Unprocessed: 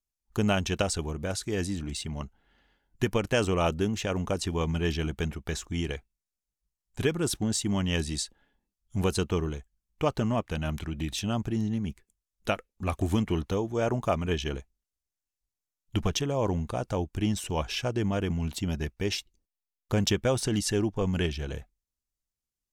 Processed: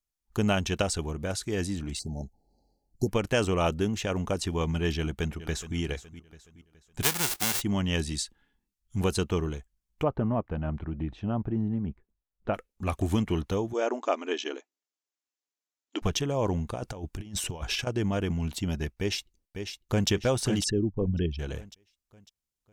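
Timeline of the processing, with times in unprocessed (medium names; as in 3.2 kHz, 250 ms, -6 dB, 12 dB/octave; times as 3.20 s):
1.99–3.09 s: brick-wall FIR band-stop 890–4000 Hz
4.97–5.77 s: echo throw 420 ms, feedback 40%, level -13.5 dB
7.02–7.60 s: formants flattened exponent 0.1
8.12–9.01 s: peaking EQ 600 Hz -13 dB 0.67 oct
10.03–12.54 s: low-pass 1.2 kHz
13.73–16.02 s: brick-wall FIR band-pass 240–7800 Hz
16.74–17.87 s: compressor with a negative ratio -33 dBFS, ratio -0.5
18.99–20.09 s: echo throw 550 ms, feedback 40%, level -7 dB
20.64–21.39 s: resonances exaggerated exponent 2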